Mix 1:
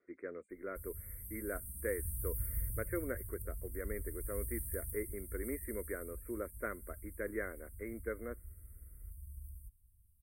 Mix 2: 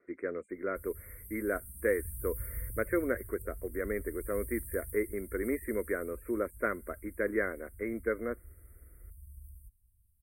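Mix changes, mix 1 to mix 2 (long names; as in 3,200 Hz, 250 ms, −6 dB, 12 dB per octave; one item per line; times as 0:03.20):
speech +8.5 dB
background: send −9.0 dB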